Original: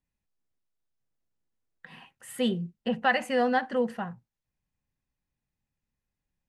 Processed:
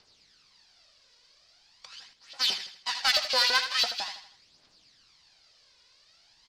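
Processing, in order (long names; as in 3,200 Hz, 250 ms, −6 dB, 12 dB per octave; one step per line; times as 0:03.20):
spectral envelope flattened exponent 0.1
auto-filter high-pass saw up 6 Hz 510–3,700 Hz
in parallel at −10.5 dB: bit-depth reduction 8 bits, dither triangular
on the sum: transistor ladder low-pass 5,200 Hz, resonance 65%
phase shifter 0.43 Hz, delay 2.1 ms, feedback 59%
soft clipping −19.5 dBFS, distortion −18 dB
on a send: repeating echo 80 ms, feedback 42%, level −10 dB
0:02.13–0:02.95: on the sum: expander for the loud parts 1.5 to 1, over −40 dBFS
level +5 dB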